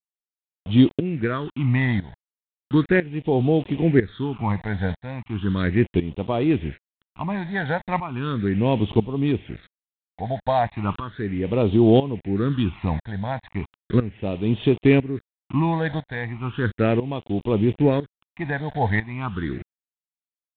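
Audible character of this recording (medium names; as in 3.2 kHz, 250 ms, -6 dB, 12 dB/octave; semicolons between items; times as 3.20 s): a quantiser's noise floor 6-bit, dither none; tremolo saw up 1 Hz, depth 80%; phasing stages 8, 0.36 Hz, lowest notch 350–1600 Hz; G.726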